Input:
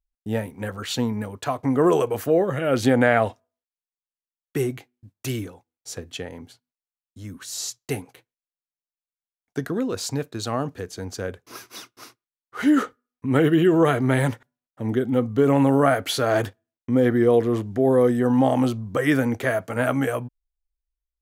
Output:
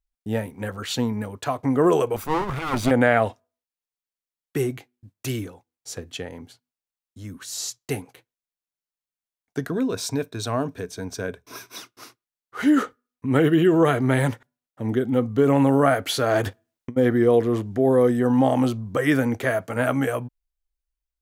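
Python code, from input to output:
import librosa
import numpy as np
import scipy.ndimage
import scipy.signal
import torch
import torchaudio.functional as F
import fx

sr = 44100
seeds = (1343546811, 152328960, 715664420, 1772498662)

y = fx.lower_of_two(x, sr, delay_ms=0.85, at=(2.16, 2.91))
y = fx.ripple_eq(y, sr, per_octave=1.6, db=7, at=(9.71, 11.78))
y = fx.over_compress(y, sr, threshold_db=-29.0, ratio=-0.5, at=(16.45, 16.96), fade=0.02)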